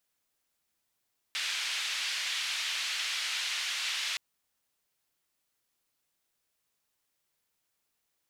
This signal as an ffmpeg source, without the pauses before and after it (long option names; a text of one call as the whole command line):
ffmpeg -f lavfi -i "anoisesrc=color=white:duration=2.82:sample_rate=44100:seed=1,highpass=frequency=2500,lowpass=frequency=3200,volume=-15.9dB" out.wav